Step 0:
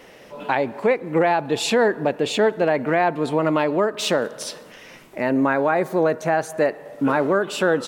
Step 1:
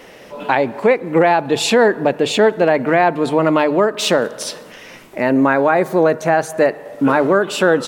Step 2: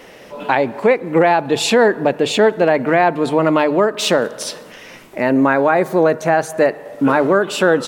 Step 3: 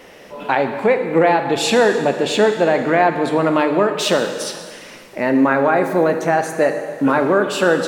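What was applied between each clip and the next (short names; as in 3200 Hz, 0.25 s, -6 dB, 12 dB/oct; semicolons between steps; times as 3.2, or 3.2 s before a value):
notches 50/100/150 Hz; gain +5.5 dB
nothing audible
plate-style reverb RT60 1.8 s, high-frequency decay 1×, DRR 6 dB; gain -2 dB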